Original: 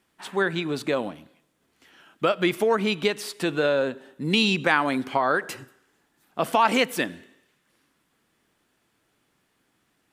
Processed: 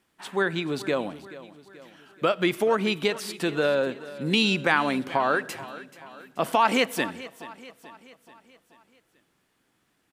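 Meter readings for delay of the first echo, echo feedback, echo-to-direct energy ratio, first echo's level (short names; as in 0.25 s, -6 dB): 0.432 s, 52%, -15.5 dB, -17.0 dB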